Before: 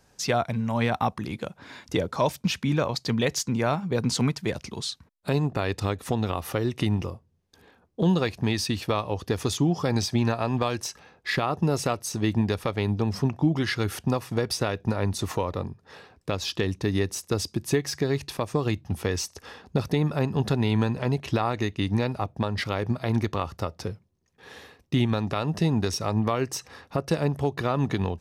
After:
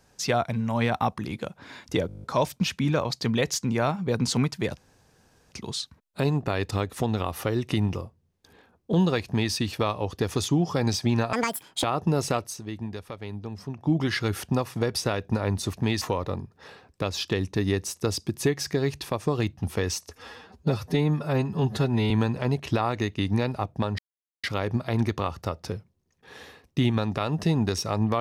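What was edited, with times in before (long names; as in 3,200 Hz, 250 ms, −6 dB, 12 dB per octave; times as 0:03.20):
0:02.07: stutter 0.02 s, 9 plays
0:04.61: splice in room tone 0.75 s
0:08.34–0:08.62: duplicate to 0:15.29
0:10.42–0:11.39: play speed 192%
0:11.98–0:13.49: duck −10.5 dB, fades 0.18 s
0:19.37–0:20.71: time-stretch 1.5×
0:22.59: splice in silence 0.45 s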